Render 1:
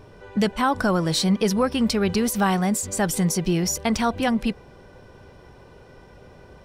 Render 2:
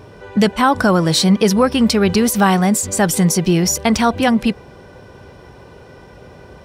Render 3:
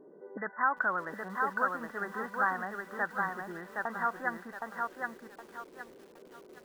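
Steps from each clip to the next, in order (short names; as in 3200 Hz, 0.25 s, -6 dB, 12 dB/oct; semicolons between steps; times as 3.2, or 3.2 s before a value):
HPF 53 Hz; gain +7.5 dB
auto-wah 320–1500 Hz, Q 2.1, up, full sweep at -15 dBFS; brick-wall FIR band-pass 150–2000 Hz; lo-fi delay 0.767 s, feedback 35%, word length 8-bit, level -3 dB; gain -8.5 dB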